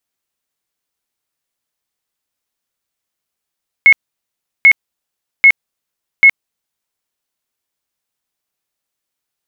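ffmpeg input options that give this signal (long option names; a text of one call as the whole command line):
ffmpeg -f lavfi -i "aevalsrc='0.794*sin(2*PI*2180*mod(t,0.79))*lt(mod(t,0.79),144/2180)':duration=3.16:sample_rate=44100" out.wav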